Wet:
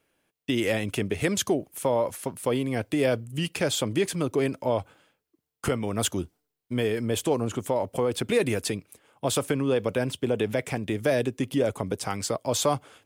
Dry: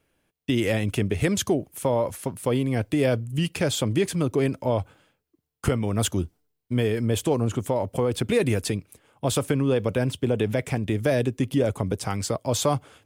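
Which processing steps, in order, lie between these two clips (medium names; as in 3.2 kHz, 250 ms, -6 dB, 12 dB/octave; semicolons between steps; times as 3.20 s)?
bass shelf 140 Hz -12 dB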